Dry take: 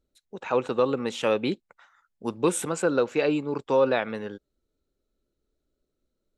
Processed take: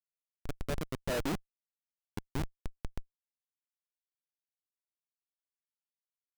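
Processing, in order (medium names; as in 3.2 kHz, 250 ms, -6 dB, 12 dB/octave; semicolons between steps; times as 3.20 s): Doppler pass-by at 1.37 s, 44 m/s, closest 5 m; peaking EQ 160 Hz +14 dB 0.22 oct; Schmitt trigger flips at -34 dBFS; trim +9 dB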